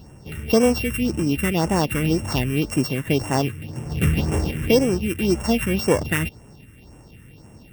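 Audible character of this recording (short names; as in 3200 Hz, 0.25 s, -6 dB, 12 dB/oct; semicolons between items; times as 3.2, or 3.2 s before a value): a buzz of ramps at a fixed pitch in blocks of 16 samples; phasing stages 4, 1.9 Hz, lowest notch 730–4100 Hz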